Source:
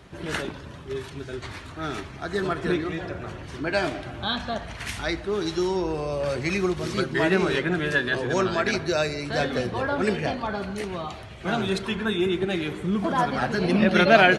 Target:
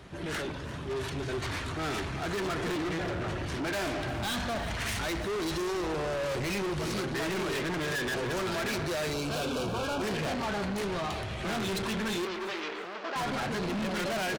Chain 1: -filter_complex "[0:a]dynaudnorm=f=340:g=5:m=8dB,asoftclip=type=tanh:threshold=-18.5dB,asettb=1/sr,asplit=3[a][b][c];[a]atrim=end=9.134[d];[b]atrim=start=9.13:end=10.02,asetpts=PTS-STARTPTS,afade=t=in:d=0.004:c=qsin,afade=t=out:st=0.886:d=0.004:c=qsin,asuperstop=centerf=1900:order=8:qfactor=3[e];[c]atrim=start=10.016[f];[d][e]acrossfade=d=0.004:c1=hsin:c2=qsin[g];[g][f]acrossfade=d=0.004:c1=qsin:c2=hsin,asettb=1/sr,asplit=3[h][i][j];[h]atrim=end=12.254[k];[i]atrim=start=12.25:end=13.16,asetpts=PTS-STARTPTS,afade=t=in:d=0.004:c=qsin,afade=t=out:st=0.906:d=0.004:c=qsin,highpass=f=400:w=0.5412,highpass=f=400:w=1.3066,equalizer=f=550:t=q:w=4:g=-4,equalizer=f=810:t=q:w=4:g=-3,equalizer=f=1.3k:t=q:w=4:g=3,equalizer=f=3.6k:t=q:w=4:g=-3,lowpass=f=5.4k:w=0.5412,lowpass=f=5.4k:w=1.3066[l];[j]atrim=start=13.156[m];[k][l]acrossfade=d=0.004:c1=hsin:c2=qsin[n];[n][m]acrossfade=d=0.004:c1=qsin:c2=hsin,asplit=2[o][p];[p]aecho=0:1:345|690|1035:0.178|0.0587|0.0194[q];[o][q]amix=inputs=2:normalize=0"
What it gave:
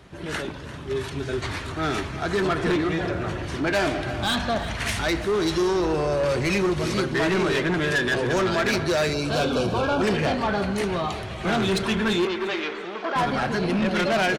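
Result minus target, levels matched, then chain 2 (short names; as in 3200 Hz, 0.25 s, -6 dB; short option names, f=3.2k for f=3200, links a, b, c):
soft clip: distortion -6 dB
-filter_complex "[0:a]dynaudnorm=f=340:g=5:m=8dB,asoftclip=type=tanh:threshold=-30.5dB,asettb=1/sr,asplit=3[a][b][c];[a]atrim=end=9.134[d];[b]atrim=start=9.13:end=10.02,asetpts=PTS-STARTPTS,afade=t=in:d=0.004:c=qsin,afade=t=out:st=0.886:d=0.004:c=qsin,asuperstop=centerf=1900:order=8:qfactor=3[e];[c]atrim=start=10.016[f];[d][e]acrossfade=d=0.004:c1=hsin:c2=qsin[g];[g][f]acrossfade=d=0.004:c1=qsin:c2=hsin,asettb=1/sr,asplit=3[h][i][j];[h]atrim=end=12.254[k];[i]atrim=start=12.25:end=13.16,asetpts=PTS-STARTPTS,afade=t=in:d=0.004:c=qsin,afade=t=out:st=0.906:d=0.004:c=qsin,highpass=f=400:w=0.5412,highpass=f=400:w=1.3066,equalizer=f=550:t=q:w=4:g=-4,equalizer=f=810:t=q:w=4:g=-3,equalizer=f=1.3k:t=q:w=4:g=3,equalizer=f=3.6k:t=q:w=4:g=-3,lowpass=f=5.4k:w=0.5412,lowpass=f=5.4k:w=1.3066[l];[j]atrim=start=13.156[m];[k][l]acrossfade=d=0.004:c1=hsin:c2=qsin[n];[n][m]acrossfade=d=0.004:c1=qsin:c2=hsin,asplit=2[o][p];[p]aecho=0:1:345|690|1035:0.178|0.0587|0.0194[q];[o][q]amix=inputs=2:normalize=0"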